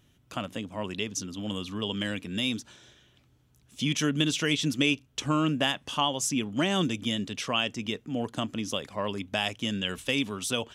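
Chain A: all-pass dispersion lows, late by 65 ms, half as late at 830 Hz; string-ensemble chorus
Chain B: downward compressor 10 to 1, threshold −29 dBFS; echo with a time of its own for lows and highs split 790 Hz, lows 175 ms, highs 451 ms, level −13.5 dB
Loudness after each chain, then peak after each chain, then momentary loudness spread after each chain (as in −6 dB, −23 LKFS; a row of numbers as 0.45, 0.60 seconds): −32.5, −34.5 LKFS; −14.5, −15.5 dBFS; 8, 5 LU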